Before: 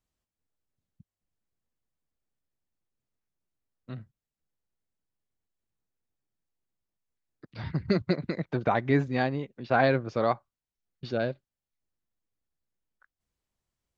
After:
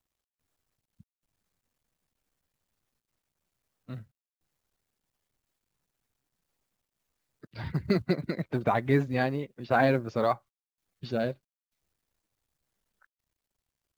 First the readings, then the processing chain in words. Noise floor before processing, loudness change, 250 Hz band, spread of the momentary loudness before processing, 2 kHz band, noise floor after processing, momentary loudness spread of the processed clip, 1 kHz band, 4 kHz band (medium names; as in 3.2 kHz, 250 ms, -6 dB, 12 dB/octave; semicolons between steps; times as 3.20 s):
under -85 dBFS, -0.5 dB, 0.0 dB, 19 LU, -1.0 dB, under -85 dBFS, 19 LU, -0.5 dB, -1.5 dB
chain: coarse spectral quantiser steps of 15 dB; companded quantiser 8-bit